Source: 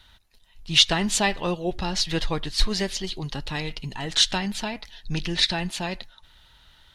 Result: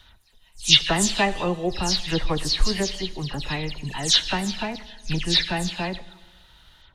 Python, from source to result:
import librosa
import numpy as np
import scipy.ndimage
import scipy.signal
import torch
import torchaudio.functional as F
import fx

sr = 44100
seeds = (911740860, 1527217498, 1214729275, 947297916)

y = fx.spec_delay(x, sr, highs='early', ms=131)
y = fx.rev_schroeder(y, sr, rt60_s=1.4, comb_ms=29, drr_db=16.5)
y = F.gain(torch.from_numpy(y), 2.0).numpy()